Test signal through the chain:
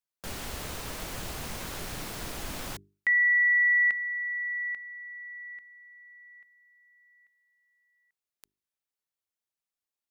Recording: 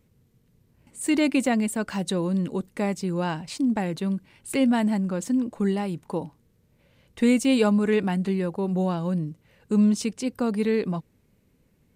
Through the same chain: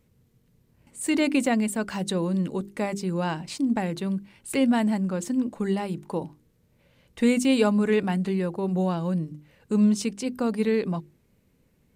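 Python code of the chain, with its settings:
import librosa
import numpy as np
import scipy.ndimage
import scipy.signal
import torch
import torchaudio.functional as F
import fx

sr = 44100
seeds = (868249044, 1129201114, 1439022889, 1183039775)

y = fx.hum_notches(x, sr, base_hz=50, count=8)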